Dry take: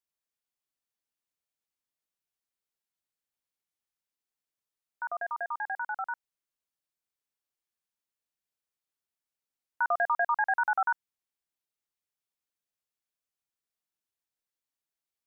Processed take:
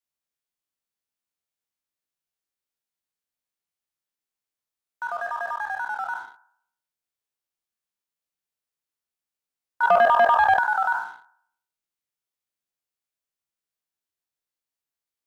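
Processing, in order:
peak hold with a decay on every bin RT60 0.66 s
0:09.83–0:10.59: parametric band 510 Hz +13.5 dB 1.6 octaves
leveller curve on the samples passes 1

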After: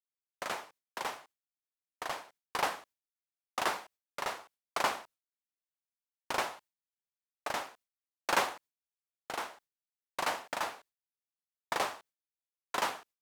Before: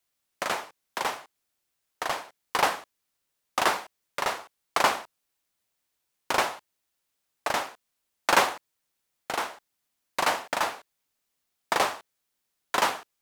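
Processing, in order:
noise gate with hold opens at −41 dBFS
level −8 dB

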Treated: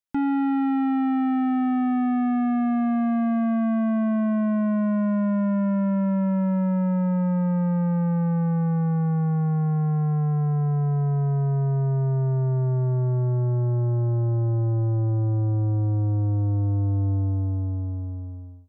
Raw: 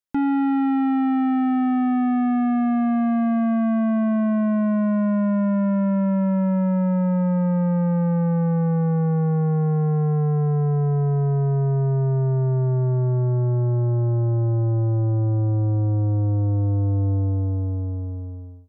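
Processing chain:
parametric band 460 Hz −8.5 dB 0.3 octaves
level −2 dB

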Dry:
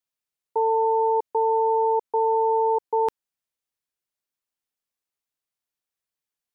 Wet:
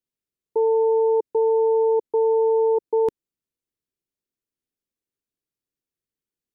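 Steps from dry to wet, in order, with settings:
low shelf with overshoot 540 Hz +10.5 dB, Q 1.5
level −5 dB

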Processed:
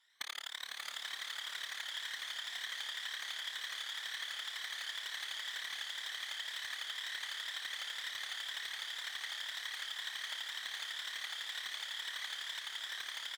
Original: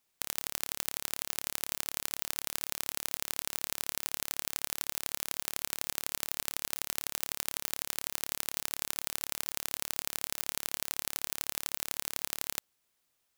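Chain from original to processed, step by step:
rippled gain that drifts along the octave scale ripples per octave 1.9, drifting +2 Hz, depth 17 dB
pair of resonant band-passes 2,900 Hz, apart 0.76 octaves
soft clipping −25.5 dBFS, distortion −19 dB
on a send: repeating echo 843 ms, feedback 40%, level −4 dB
on the sum: formants moved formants −3 semitones
random phases in short frames
downward compressor 6 to 1, threshold −55 dBFS, peak gain reduction 14 dB
slow-attack reverb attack 740 ms, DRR 5 dB
level +14.5 dB

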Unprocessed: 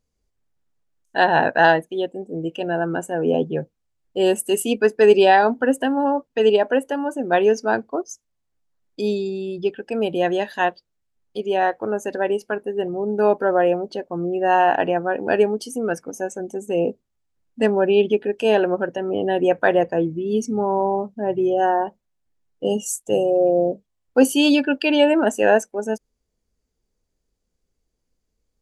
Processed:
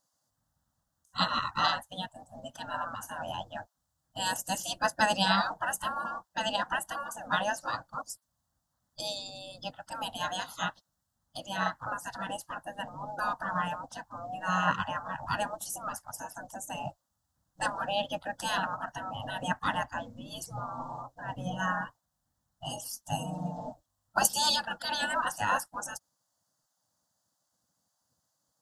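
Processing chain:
gate on every frequency bin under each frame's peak −20 dB weak
phaser with its sweep stopped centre 980 Hz, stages 4
level +8.5 dB

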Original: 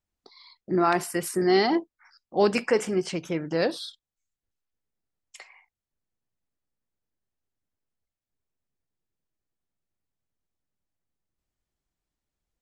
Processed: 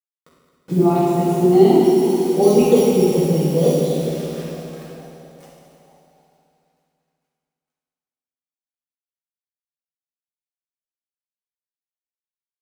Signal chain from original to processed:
feedback delay that plays each chunk backwards 210 ms, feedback 66%, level −10.5 dB
low-pass filter 9,600 Hz 12 dB per octave
tilt shelving filter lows +7.5 dB, about 1,100 Hz
0:01.79–0:03.80: sample-rate reduction 5,200 Hz, jitter 0%
flanger swept by the level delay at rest 9.5 ms, full sweep at −30.5 dBFS
all-pass dispersion highs, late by 44 ms, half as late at 1,700 Hz
bit reduction 7 bits
echo with shifted repeats 454 ms, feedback 57%, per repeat +56 Hz, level −19 dB
convolution reverb RT60 2.2 s, pre-delay 3 ms, DRR −8 dB
level −3.5 dB

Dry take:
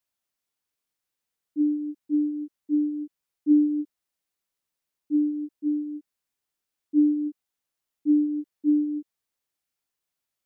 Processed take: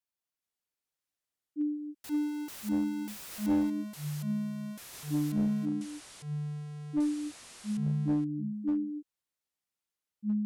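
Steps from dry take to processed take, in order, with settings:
0:02.04–0:03.70: converter with a step at zero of −29.5 dBFS
delay with pitch and tempo change per echo 423 ms, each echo −6 semitones, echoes 2
asymmetric clip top −17 dBFS
level −8.5 dB

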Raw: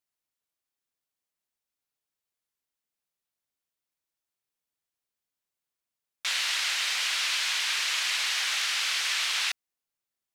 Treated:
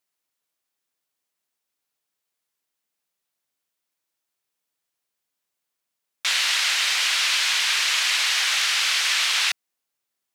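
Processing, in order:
low-shelf EQ 100 Hz −12 dB
level +6.5 dB

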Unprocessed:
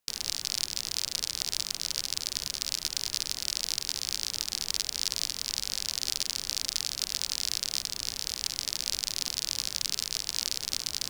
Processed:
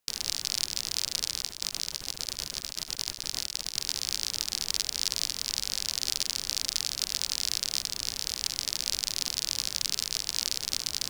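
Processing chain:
0:01.41–0:03.77: compressor whose output falls as the input rises −36 dBFS, ratio −0.5
level +1 dB

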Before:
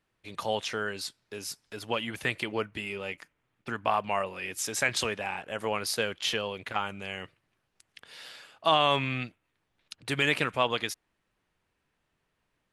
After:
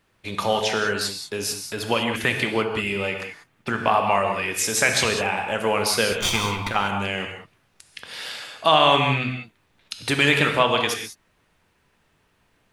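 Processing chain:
0:06.12–0:06.68: lower of the sound and its delayed copy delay 0.87 ms
in parallel at +1 dB: downward compressor, threshold −38 dBFS, peak gain reduction 18.5 dB
on the sum: reverb whose tail is shaped and stops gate 220 ms flat, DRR 3.5 dB
level +5 dB

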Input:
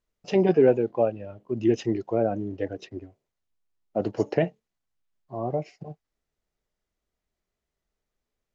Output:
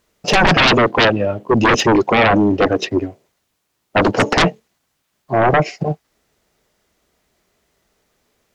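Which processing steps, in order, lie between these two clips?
high-pass filter 140 Hz 6 dB per octave
sine wavefolder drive 18 dB, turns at −8.5 dBFS

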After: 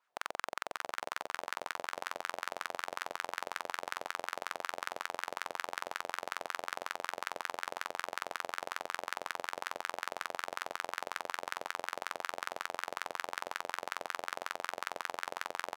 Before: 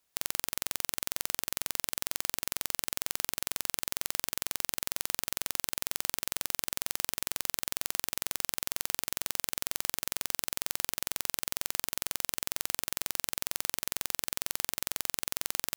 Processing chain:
repeating echo 600 ms, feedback 59%, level −15 dB
LFO wah 5.4 Hz 590–1,500 Hz, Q 2.7
level +10.5 dB

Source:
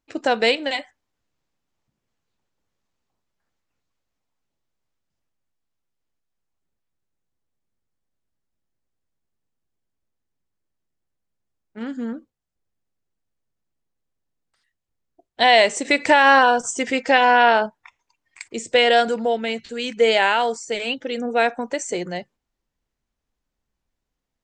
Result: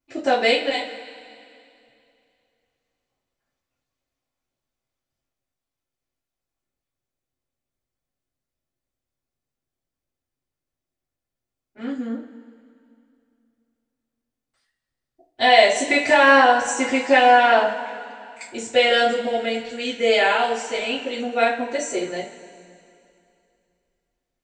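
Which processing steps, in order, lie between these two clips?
coupled-rooms reverb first 0.29 s, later 2.6 s, from −20 dB, DRR −9.5 dB
level −10 dB

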